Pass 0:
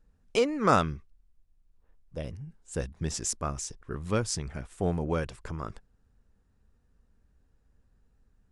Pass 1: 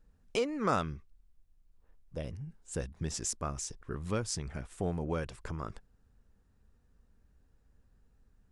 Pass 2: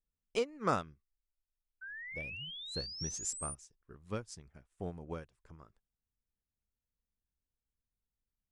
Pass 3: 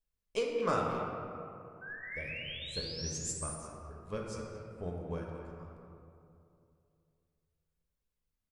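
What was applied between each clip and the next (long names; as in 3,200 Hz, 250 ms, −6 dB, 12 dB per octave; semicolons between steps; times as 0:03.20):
downward compressor 1.5 to 1, threshold −38 dBFS, peak gain reduction 8 dB
sound drawn into the spectrogram rise, 0:01.81–0:03.55, 1,500–9,700 Hz −34 dBFS; expander for the loud parts 2.5 to 1, over −44 dBFS
far-end echo of a speakerphone 220 ms, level −9 dB; convolution reverb RT60 2.6 s, pre-delay 4 ms, DRR −1 dB; level −2 dB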